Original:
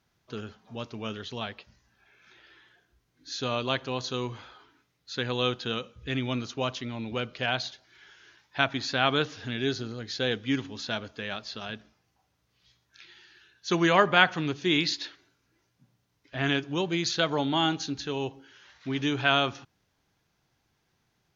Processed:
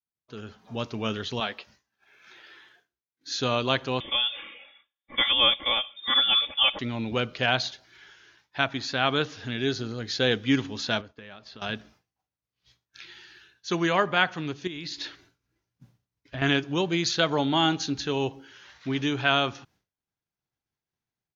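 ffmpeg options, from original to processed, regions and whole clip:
ffmpeg -i in.wav -filter_complex "[0:a]asettb=1/sr,asplit=3[link_01][link_02][link_03];[link_01]atrim=end=1.404[link_04];[link_02]atrim=start=1.4:end=3.31,asetpts=PTS-STARTPTS,afade=type=in:duration=0.004:curve=qsin,afade=type=out:start_time=1.906:duration=0.004:curve=qsin,highpass=frequency=340:poles=1,asplit=2[link_05][link_06];[link_06]adelay=14,volume=-13dB[link_07];[link_05][link_07]amix=inputs=2:normalize=0,atrim=end_sample=84231[link_08];[link_03]atrim=start=3.306[link_09];[link_04][link_08]acrossfade=duration=0.004:curve1=hsin:curve2=qsin[link_10];[link_10][link_09]acrossfade=duration=0.004:curve1=qsin:curve2=hsin,asettb=1/sr,asplit=3[link_11][link_12][link_13];[link_11]atrim=end=4.004[link_14];[link_12]atrim=start=4:end=6.79,asetpts=PTS-STARTPTS,afade=type=in:duration=0.004:curve=qsin,afade=type=out:start_time=2.786:duration=0.004:curve=qsin,aecho=1:1:3.5:1,atrim=end_sample=123039,lowpass=frequency=3100:width_type=q:width=0.5098,lowpass=frequency=3100:width_type=q:width=0.6013,lowpass=frequency=3100:width_type=q:width=0.9,lowpass=frequency=3100:width_type=q:width=2.563,afreqshift=-3700[link_15];[link_13]atrim=start=6.786[link_16];[link_14][link_15]acrossfade=duration=0.004:curve1=hsin:curve2=qsin[link_17];[link_17][link_16]acrossfade=duration=0.004:curve1=qsin:curve2=hsin,asettb=1/sr,asplit=3[link_18][link_19][link_20];[link_18]atrim=end=11.014[link_21];[link_19]atrim=start=11.01:end=11.62,asetpts=PTS-STARTPTS,afade=type=in:duration=0.004:curve=qsin,afade=type=out:start_time=0.606:duration=0.004:curve=qsin,lowpass=frequency=2800:poles=1,agate=range=-33dB:threshold=-47dB:ratio=3:release=100:detection=peak,acompressor=threshold=-50dB:ratio=3:attack=3.2:release=140:knee=1:detection=peak[link_22];[link_20]atrim=start=11.616[link_23];[link_21][link_22]acrossfade=duration=0.004:curve1=hsin:curve2=qsin[link_24];[link_24][link_23]acrossfade=duration=0.004:curve1=qsin:curve2=hsin,asettb=1/sr,asplit=3[link_25][link_26][link_27];[link_25]atrim=end=14.674[link_28];[link_26]atrim=start=14.67:end=16.42,asetpts=PTS-STARTPTS,afade=type=in:duration=0.004:curve=qsin,afade=type=out:start_time=1.746:duration=0.004:curve=qsin,lowshelf=frequency=120:gain=9.5,acompressor=threshold=-33dB:ratio=6:attack=3.2:release=140:knee=1:detection=peak[link_29];[link_27]atrim=start=16.416[link_30];[link_28][link_29]acrossfade=duration=0.004:curve1=hsin:curve2=qsin[link_31];[link_31][link_30]acrossfade=duration=0.004:curve1=qsin:curve2=hsin,agate=range=-33dB:threshold=-58dB:ratio=3:detection=peak,dynaudnorm=framelen=360:gausssize=3:maxgain=12dB,volume=-6dB" out.wav

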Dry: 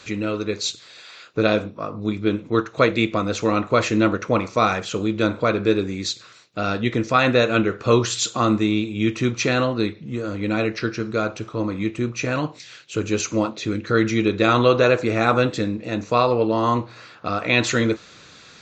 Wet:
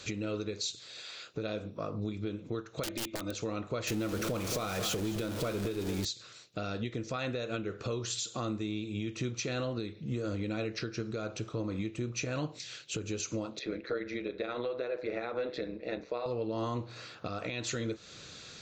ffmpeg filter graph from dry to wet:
ffmpeg -i in.wav -filter_complex "[0:a]asettb=1/sr,asplit=3[link_01][link_02][link_03];[link_01]atrim=end=2.834[link_04];[link_02]atrim=start=2.83:end=3.35,asetpts=PTS-STARTPTS,afade=type=in:duration=0.004:curve=qsin,afade=type=out:start_time=0.516:duration=0.004:curve=qsin,acrossover=split=5000[link_05][link_06];[link_06]acompressor=threshold=-49dB:ratio=4:attack=1:release=60[link_07];[link_05][link_07]amix=inputs=2:normalize=0,aecho=1:1:3.3:0.91,atrim=end_sample=22932,aeval=exprs='(mod(3.35*val(0)+1,2)-1)/3.35':channel_layout=same[link_08];[link_03]atrim=start=3.346[link_09];[link_04][link_08]acrossfade=duration=0.004:curve1=hsin:curve2=qsin[link_10];[link_10][link_09]acrossfade=duration=0.004:curve1=qsin:curve2=hsin,asettb=1/sr,asplit=3[link_11][link_12][link_13];[link_11]atrim=end=3.874[link_14];[link_12]atrim=start=3.87:end=6.05,asetpts=PTS-STARTPTS,afade=type=in:duration=0.004:curve=qsin,afade=type=out:start_time=2.176:duration=0.004:curve=qsin,aeval=exprs='val(0)+0.5*0.0841*sgn(val(0))':channel_layout=same,aecho=1:1:219:0.237,atrim=end_sample=96138[link_15];[link_13]atrim=start=6.046[link_16];[link_14][link_15]acrossfade=duration=0.004:curve1=hsin:curve2=qsin[link_17];[link_17][link_16]acrossfade=duration=0.004:curve1=qsin:curve2=hsin,asettb=1/sr,asplit=3[link_18][link_19][link_20];[link_18]atrim=end=13.594[link_21];[link_19]atrim=start=13.59:end=16.26,asetpts=PTS-STARTPTS,afade=type=in:duration=0.004:curve=qsin,afade=type=out:start_time=2.666:duration=0.004:curve=qsin,highpass=350,equalizer=frequency=480:width_type=q:width=4:gain=4,equalizer=frequency=1200:width_type=q:width=4:gain=-3,equalizer=frequency=2000:width_type=q:width=4:gain=5,equalizer=frequency=3000:width_type=q:width=4:gain=-10,lowpass=frequency=4000:width=0.5412,lowpass=frequency=4000:width=1.3066,tremolo=f=130:d=0.621[link_22];[link_20]atrim=start=16.256[link_23];[link_21][link_22]acrossfade=duration=0.004:curve1=hsin:curve2=qsin[link_24];[link_24][link_23]acrossfade=duration=0.004:curve1=qsin:curve2=hsin,equalizer=frequency=250:width_type=o:width=1:gain=-4,equalizer=frequency=1000:width_type=o:width=1:gain=-7,equalizer=frequency=2000:width_type=o:width=1:gain=-5,acompressor=threshold=-27dB:ratio=6,alimiter=level_in=0.5dB:limit=-24dB:level=0:latency=1:release=330,volume=-0.5dB" out.wav

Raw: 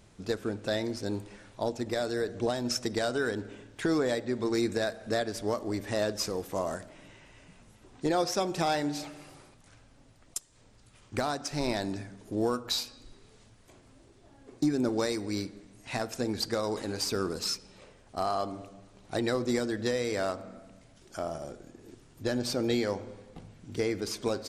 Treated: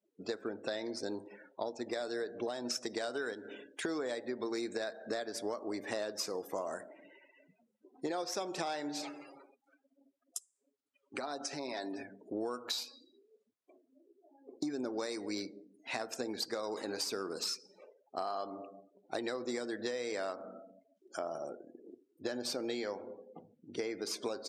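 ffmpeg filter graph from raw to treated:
ffmpeg -i in.wav -filter_complex "[0:a]asettb=1/sr,asplit=3[link_01][link_02][link_03];[link_01]atrim=end=3.334[link_04];[link_02]atrim=start=3.33:end=3.85,asetpts=PTS-STARTPTS,afade=type=in:duration=0.004:curve=qsin,afade=type=out:start_time=0.516:duration=0.004:curve=qsin,highshelf=frequency=2300:gain=7.5,acompressor=threshold=-39dB:ratio=2.5:attack=3.2:release=140:knee=1:detection=peak[link_05];[link_03]atrim=start=3.846[link_06];[link_04][link_05]acrossfade=duration=0.004:curve1=hsin:curve2=qsin[link_07];[link_07][link_06]acrossfade=duration=0.004:curve1=qsin:curve2=hsin,asettb=1/sr,asplit=3[link_08][link_09][link_10];[link_08]atrim=end=9.024[link_11];[link_09]atrim=start=9.02:end=12.03,asetpts=PTS-STARTPTS,afade=type=in:duration=0.004:curve=qsin,afade=type=out:start_time=3.006:duration=0.004:curve=qsin,highpass=140,aecho=1:1:7.3:0.5,atrim=end_sample=132741,acompressor=threshold=-34dB:ratio=4:attack=3.2:release=140:knee=1:detection=peak[link_12];[link_10]atrim=start=12.026[link_13];[link_11][link_12]acrossfade=duration=0.004:curve1=hsin:curve2=qsin[link_14];[link_14][link_13]acrossfade=duration=0.004:curve1=qsin:curve2=hsin,highpass=310,afftdn=noise_reduction=35:noise_floor=-51,acompressor=threshold=-35dB:ratio=6,volume=1dB" out.wav

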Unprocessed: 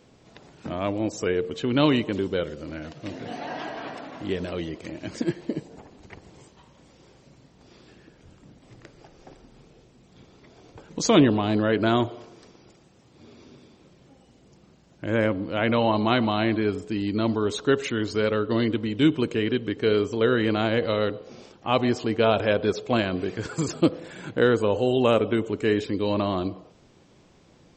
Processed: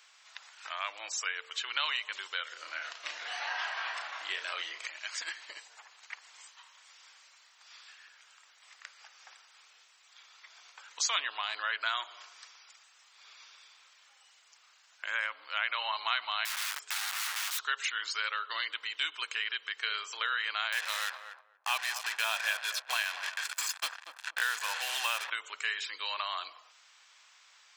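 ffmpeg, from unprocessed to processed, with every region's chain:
ffmpeg -i in.wav -filter_complex "[0:a]asettb=1/sr,asplit=3[link_01][link_02][link_03];[link_01]atrim=end=2.524[link_04];[link_02]atrim=start=2.52:end=4.87,asetpts=PTS-STARTPTS,afade=type=in:duration=0.004:curve=qsin,afade=type=out:start_time=2.346:duration=0.004:curve=qsin,equalizer=frequency=340:width_type=o:width=2.4:gain=7,asplit=2[link_05][link_06];[link_06]adelay=34,volume=-5.5dB[link_07];[link_05][link_07]amix=inputs=2:normalize=0,atrim=end_sample=103635[link_08];[link_03]atrim=start=4.866[link_09];[link_04][link_08]acrossfade=duration=0.004:curve1=hsin:curve2=qsin[link_10];[link_10][link_09]acrossfade=duration=0.004:curve1=qsin:curve2=hsin,asettb=1/sr,asplit=3[link_11][link_12][link_13];[link_11]atrim=end=16.454[link_14];[link_12]atrim=start=16.45:end=17.67,asetpts=PTS-STARTPTS,afade=type=in:duration=0.004:curve=qsin,afade=type=out:start_time=1.216:duration=0.004:curve=qsin,equalizer=frequency=150:width=0.38:gain=-2.5,aeval=exprs='(mod(26.6*val(0)+1,2)-1)/26.6':channel_layout=same[link_15];[link_13]atrim=start=17.666[link_16];[link_14][link_15]acrossfade=duration=0.004:curve1=hsin:curve2=qsin[link_17];[link_17][link_16]acrossfade=duration=0.004:curve1=qsin:curve2=hsin,asettb=1/sr,asplit=3[link_18][link_19][link_20];[link_18]atrim=end=20.724[link_21];[link_19]atrim=start=20.72:end=25.3,asetpts=PTS-STARTPTS,afade=type=in:duration=0.004:curve=qsin,afade=type=out:start_time=4.576:duration=0.004:curve=qsin,acrusher=bits=4:mix=0:aa=0.5,aecho=1:1:1.2:0.42,atrim=end_sample=201978,asplit=2[link_22][link_23];[link_23]adelay=238,lowpass=frequency=900:poles=1,volume=-10dB,asplit=2[link_24][link_25];[link_25]adelay=238,lowpass=frequency=900:poles=1,volume=0.21,asplit=2[link_26][link_27];[link_27]adelay=238,lowpass=frequency=900:poles=1,volume=0.21[link_28];[link_22][link_24][link_26][link_28]amix=inputs=4:normalize=0,atrim=end_sample=201978[link_29];[link_20]atrim=start=25.296[link_30];[link_21][link_29]acrossfade=duration=0.004:curve1=hsin:curve2=qsin[link_31];[link_31][link_30]acrossfade=duration=0.004:curve1=qsin:curve2=hsin,highpass=frequency=1200:width=0.5412,highpass=frequency=1200:width=1.3066,acompressor=threshold=-38dB:ratio=2,volume=5dB" out.wav

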